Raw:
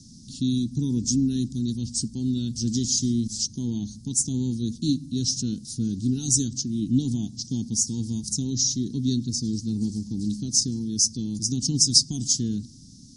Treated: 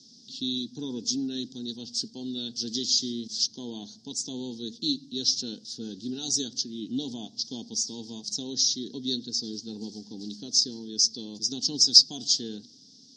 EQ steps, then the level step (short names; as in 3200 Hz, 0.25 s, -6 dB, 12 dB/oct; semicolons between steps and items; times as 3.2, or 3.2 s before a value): speaker cabinet 420–5400 Hz, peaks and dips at 440 Hz +6 dB, 750 Hz +8 dB, 1100 Hz +9 dB, 1600 Hz +5 dB, 3400 Hz +6 dB, 4900 Hz +4 dB; dynamic EQ 4200 Hz, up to +4 dB, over -41 dBFS, Q 2.9; bell 560 Hz +11 dB 0.29 oct; 0.0 dB